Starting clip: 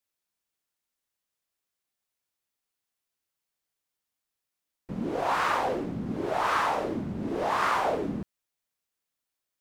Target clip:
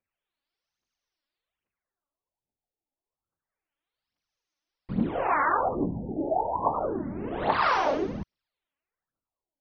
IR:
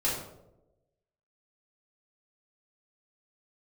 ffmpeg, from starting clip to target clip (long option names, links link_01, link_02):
-af "highshelf=frequency=11000:gain=9.5,aphaser=in_gain=1:out_gain=1:delay=3.7:decay=0.62:speed=1.2:type=triangular,afftfilt=real='re*lt(b*sr/1024,890*pow(6700/890,0.5+0.5*sin(2*PI*0.28*pts/sr)))':imag='im*lt(b*sr/1024,890*pow(6700/890,0.5+0.5*sin(2*PI*0.28*pts/sr)))':win_size=1024:overlap=0.75"